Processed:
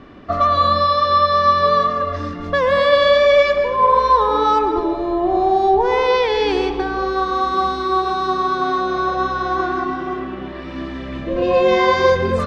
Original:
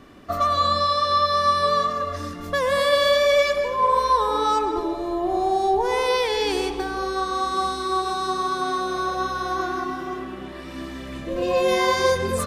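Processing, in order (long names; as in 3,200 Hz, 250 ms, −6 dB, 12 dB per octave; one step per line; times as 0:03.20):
high-frequency loss of the air 200 metres
level +6.5 dB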